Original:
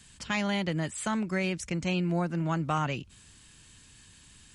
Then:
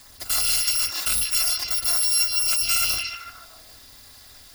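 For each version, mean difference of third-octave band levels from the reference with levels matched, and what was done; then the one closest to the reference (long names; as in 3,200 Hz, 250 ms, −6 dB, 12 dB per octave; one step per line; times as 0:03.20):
14.5 dB: samples in bit-reversed order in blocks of 256 samples
parametric band 4,900 Hz +8.5 dB 0.32 octaves
on a send: echo through a band-pass that steps 150 ms, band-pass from 3,700 Hz, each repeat −0.7 octaves, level 0 dB
on the sum: level +6 dB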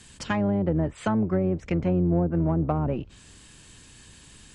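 6.5 dB: sub-octave generator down 1 octave, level −5 dB
treble cut that deepens with the level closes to 530 Hz, closed at −24 dBFS
parametric band 470 Hz +5.5 dB 2 octaves
in parallel at −9 dB: soft clipping −25 dBFS, distortion −14 dB
on the sum: level +1.5 dB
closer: second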